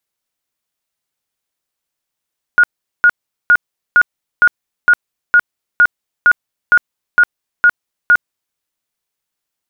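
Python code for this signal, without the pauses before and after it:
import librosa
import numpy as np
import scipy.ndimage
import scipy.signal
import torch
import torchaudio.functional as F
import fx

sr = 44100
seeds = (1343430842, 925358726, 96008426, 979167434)

y = fx.tone_burst(sr, hz=1440.0, cycles=80, every_s=0.46, bursts=13, level_db=-4.5)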